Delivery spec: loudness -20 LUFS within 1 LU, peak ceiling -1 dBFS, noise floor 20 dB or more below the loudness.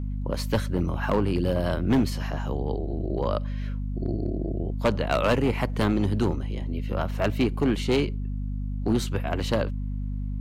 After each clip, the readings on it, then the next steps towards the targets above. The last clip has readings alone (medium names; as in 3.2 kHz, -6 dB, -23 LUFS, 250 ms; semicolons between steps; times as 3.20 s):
clipped samples 1.0%; clipping level -16.0 dBFS; hum 50 Hz; highest harmonic 250 Hz; hum level -27 dBFS; loudness -27.0 LUFS; peak level -16.0 dBFS; loudness target -20.0 LUFS
-> clip repair -16 dBFS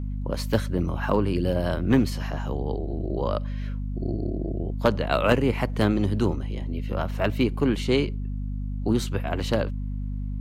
clipped samples 0.0%; hum 50 Hz; highest harmonic 250 Hz; hum level -27 dBFS
-> de-hum 50 Hz, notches 5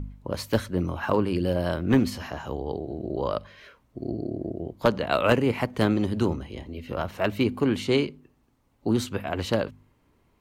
hum not found; loudness -27.0 LUFS; peak level -7.0 dBFS; loudness target -20.0 LUFS
-> trim +7 dB; peak limiter -1 dBFS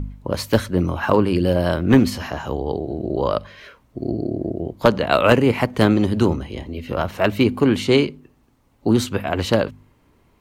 loudness -20.0 LUFS; peak level -1.0 dBFS; noise floor -59 dBFS